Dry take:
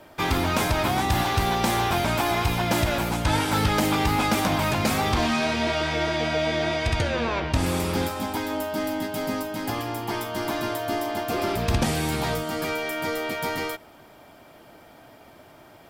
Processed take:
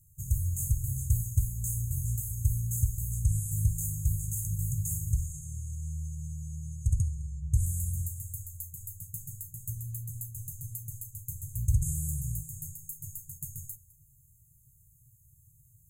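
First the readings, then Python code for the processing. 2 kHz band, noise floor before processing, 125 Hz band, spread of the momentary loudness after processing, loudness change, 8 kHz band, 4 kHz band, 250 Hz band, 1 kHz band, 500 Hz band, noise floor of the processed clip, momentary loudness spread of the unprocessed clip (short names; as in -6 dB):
under -40 dB, -50 dBFS, -1.0 dB, 11 LU, -8.5 dB, -1.5 dB, under -40 dB, under -15 dB, under -40 dB, under -40 dB, -62 dBFS, 6 LU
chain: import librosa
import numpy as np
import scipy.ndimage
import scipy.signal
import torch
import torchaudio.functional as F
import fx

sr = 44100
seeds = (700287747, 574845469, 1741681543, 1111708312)

y = fx.brickwall_bandstop(x, sr, low_hz=150.0, high_hz=6300.0)
y = y + 10.0 ** (-21.0 / 20.0) * np.pad(y, (int(208 * sr / 1000.0), 0))[:len(y)]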